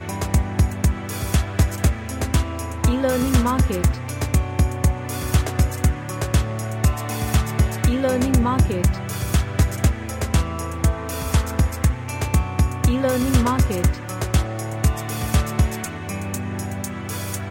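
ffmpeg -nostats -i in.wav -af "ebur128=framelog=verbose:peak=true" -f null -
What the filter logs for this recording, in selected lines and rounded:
Integrated loudness:
  I:         -22.0 LUFS
  Threshold: -32.0 LUFS
Loudness range:
  LRA:         1.6 LU
  Threshold: -41.7 LUFS
  LRA low:   -22.6 LUFS
  LRA high:  -20.9 LUFS
True peak:
  Peak:       -4.5 dBFS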